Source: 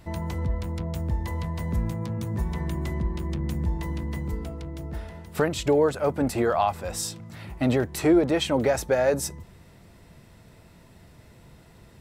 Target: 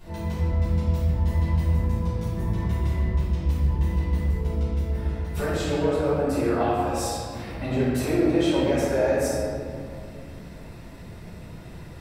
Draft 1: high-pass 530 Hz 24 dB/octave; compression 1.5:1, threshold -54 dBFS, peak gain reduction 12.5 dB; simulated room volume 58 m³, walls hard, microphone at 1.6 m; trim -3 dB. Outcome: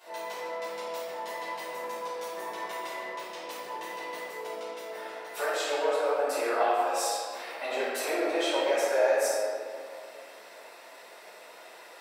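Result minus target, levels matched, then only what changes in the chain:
500 Hz band +3.5 dB
remove: high-pass 530 Hz 24 dB/octave

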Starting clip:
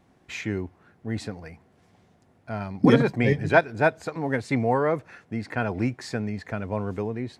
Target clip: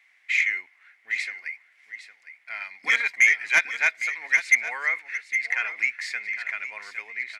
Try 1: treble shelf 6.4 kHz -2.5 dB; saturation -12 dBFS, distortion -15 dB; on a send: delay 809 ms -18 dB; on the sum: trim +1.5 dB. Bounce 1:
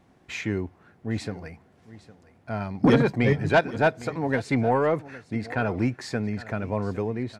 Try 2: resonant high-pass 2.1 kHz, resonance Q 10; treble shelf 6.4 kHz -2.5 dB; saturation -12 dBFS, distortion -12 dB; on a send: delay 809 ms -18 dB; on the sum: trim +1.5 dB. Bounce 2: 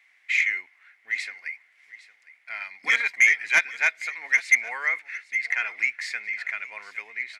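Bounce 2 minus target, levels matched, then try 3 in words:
echo-to-direct -6.5 dB
resonant high-pass 2.1 kHz, resonance Q 10; treble shelf 6.4 kHz -2.5 dB; saturation -12 dBFS, distortion -12 dB; on a send: delay 809 ms -11.5 dB; on the sum: trim +1.5 dB

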